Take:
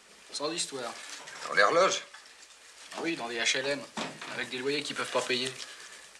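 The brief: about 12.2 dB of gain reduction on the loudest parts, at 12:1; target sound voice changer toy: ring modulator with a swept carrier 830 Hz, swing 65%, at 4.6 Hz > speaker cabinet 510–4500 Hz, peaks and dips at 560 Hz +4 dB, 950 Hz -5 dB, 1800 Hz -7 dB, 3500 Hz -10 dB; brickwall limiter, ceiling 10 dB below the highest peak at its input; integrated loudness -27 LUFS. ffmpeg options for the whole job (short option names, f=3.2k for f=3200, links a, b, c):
-af "acompressor=threshold=-30dB:ratio=12,alimiter=level_in=4.5dB:limit=-24dB:level=0:latency=1,volume=-4.5dB,aeval=exprs='val(0)*sin(2*PI*830*n/s+830*0.65/4.6*sin(2*PI*4.6*n/s))':c=same,highpass=510,equalizer=f=560:t=q:w=4:g=4,equalizer=f=950:t=q:w=4:g=-5,equalizer=f=1.8k:t=q:w=4:g=-7,equalizer=f=3.5k:t=q:w=4:g=-10,lowpass=f=4.5k:w=0.5412,lowpass=f=4.5k:w=1.3066,volume=19.5dB"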